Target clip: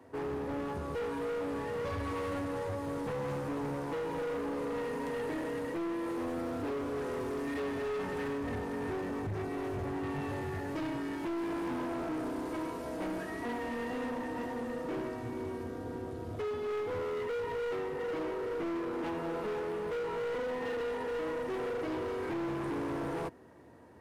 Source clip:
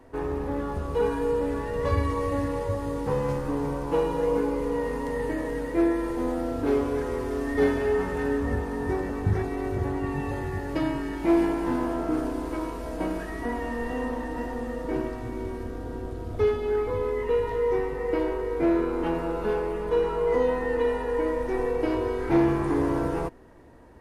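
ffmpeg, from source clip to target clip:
-af "highpass=f=88:w=0.5412,highpass=f=88:w=1.3066,alimiter=limit=-18.5dB:level=0:latency=1:release=247,asoftclip=type=hard:threshold=-29.5dB,volume=-3.5dB"

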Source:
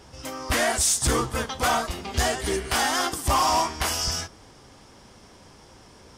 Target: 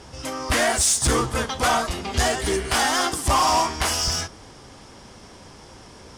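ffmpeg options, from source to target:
-filter_complex "[0:a]lowpass=f=12k:w=0.5412,lowpass=f=12k:w=1.3066,asplit=2[a][b];[b]asoftclip=type=tanh:threshold=-31dB,volume=-3.5dB[c];[a][c]amix=inputs=2:normalize=0,volume=1dB"

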